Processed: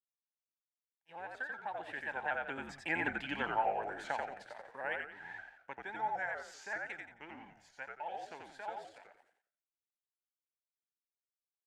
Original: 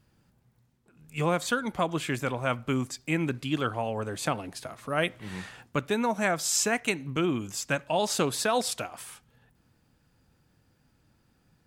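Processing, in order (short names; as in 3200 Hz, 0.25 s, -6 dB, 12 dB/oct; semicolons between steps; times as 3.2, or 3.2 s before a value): opening faded in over 3.56 s; Doppler pass-by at 3.08, 26 m/s, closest 10 m; in parallel at +2.5 dB: compressor, threshold -42 dBFS, peak gain reduction 16.5 dB; on the sum: crossover distortion -58 dBFS; double band-pass 1200 Hz, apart 0.95 oct; on a send: frequency-shifting echo 88 ms, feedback 32%, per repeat -65 Hz, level -3 dB; on the sum: shaped vibrato saw up 5.2 Hz, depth 100 cents; gain +7.5 dB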